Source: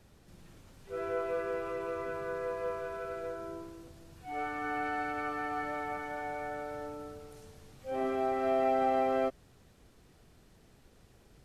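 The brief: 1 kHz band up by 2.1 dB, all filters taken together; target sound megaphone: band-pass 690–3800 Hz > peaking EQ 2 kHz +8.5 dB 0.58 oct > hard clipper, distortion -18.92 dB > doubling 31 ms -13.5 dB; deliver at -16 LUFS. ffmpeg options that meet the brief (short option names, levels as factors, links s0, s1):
-filter_complex "[0:a]highpass=690,lowpass=3800,equalizer=f=1000:t=o:g=5,equalizer=f=2000:t=o:w=0.58:g=8.5,asoftclip=type=hard:threshold=0.0531,asplit=2[s0][s1];[s1]adelay=31,volume=0.211[s2];[s0][s2]amix=inputs=2:normalize=0,volume=7.94"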